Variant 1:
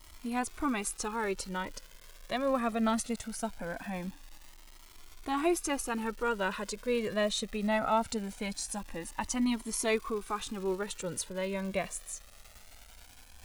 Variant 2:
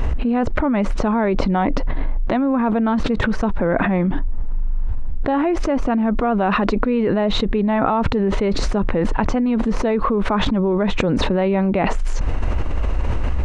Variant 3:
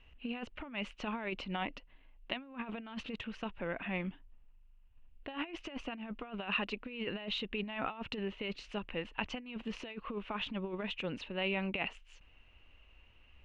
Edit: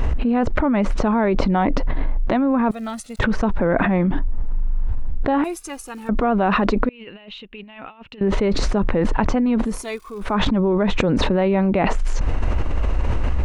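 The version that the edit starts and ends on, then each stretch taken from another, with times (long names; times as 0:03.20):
2
0:02.71–0:03.19: punch in from 1
0:05.44–0:06.09: punch in from 1
0:06.89–0:08.21: punch in from 3
0:09.71–0:10.27: punch in from 1, crossfade 0.24 s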